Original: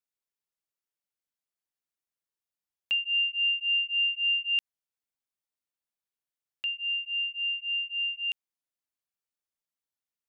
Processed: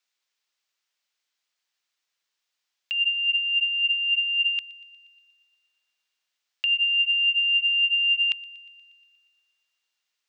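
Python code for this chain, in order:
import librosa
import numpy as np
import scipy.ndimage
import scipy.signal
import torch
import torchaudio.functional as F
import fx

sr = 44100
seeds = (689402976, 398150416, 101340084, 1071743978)

y = fx.tilt_eq(x, sr, slope=5.5)
y = fx.over_compress(y, sr, threshold_db=-26.0, ratio=-1.0)
y = 10.0 ** (-14.5 / 20.0) * np.tanh(y / 10.0 ** (-14.5 / 20.0))
y = fx.air_absorb(y, sr, metres=180.0)
y = fx.echo_wet_highpass(y, sr, ms=119, feedback_pct=65, hz=2100.0, wet_db=-21.0)
y = y * 10.0 ** (6.0 / 20.0)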